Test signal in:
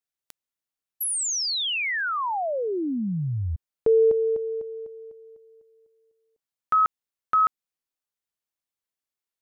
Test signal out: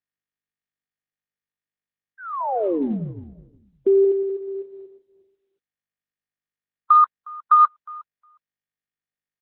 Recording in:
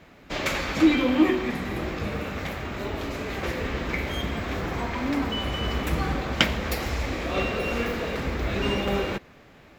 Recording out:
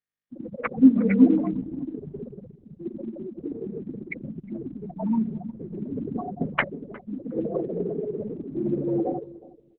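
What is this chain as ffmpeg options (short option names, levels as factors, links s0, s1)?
-filter_complex "[0:a]bandreject=f=60:t=h:w=6,bandreject=f=120:t=h:w=6,bandreject=f=180:t=h:w=6,bandreject=f=240:t=h:w=6,bandreject=f=300:t=h:w=6,bandreject=f=360:t=h:w=6,acrossover=split=530[s0][s1];[s1]adelay=180[s2];[s0][s2]amix=inputs=2:normalize=0,acrossover=split=1100[s3][s4];[s4]acrusher=bits=3:mix=0:aa=0.000001[s5];[s3][s5]amix=inputs=2:normalize=0,afftfilt=real='re*gte(hypot(re,im),0.1)':imag='im*gte(hypot(re,im),0.1)':win_size=1024:overlap=0.75,asplit=2[s6][s7];[s7]adelay=360,lowpass=f=820:p=1,volume=0.126,asplit=2[s8][s9];[s9]adelay=360,lowpass=f=820:p=1,volume=0.17[s10];[s8][s10]amix=inputs=2:normalize=0[s11];[s6][s11]amix=inputs=2:normalize=0,highpass=f=260:t=q:w=0.5412,highpass=f=260:t=q:w=1.307,lowpass=f=2100:t=q:w=0.5176,lowpass=f=2100:t=q:w=0.7071,lowpass=f=2100:t=q:w=1.932,afreqshift=-57,volume=2.11" -ar 48000 -c:a libopus -b:a 6k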